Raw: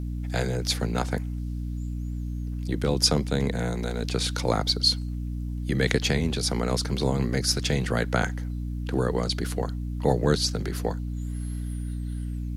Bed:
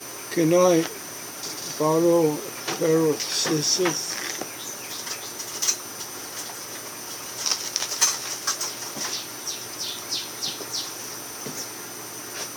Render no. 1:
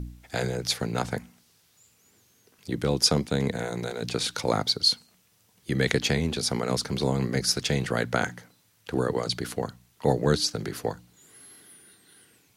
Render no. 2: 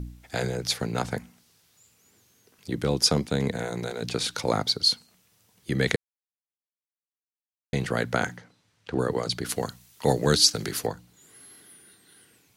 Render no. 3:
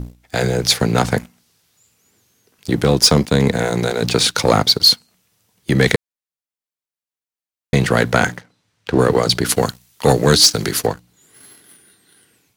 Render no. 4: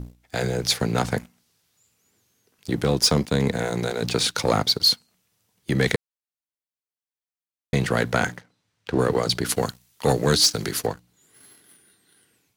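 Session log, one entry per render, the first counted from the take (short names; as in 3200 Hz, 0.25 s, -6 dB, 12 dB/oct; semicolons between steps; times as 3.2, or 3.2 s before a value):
de-hum 60 Hz, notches 5
5.96–7.73 mute; 8.37–8.99 air absorption 80 m; 9.49–10.87 high shelf 2300 Hz +10 dB
AGC gain up to 6 dB; sample leveller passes 2
gain -7 dB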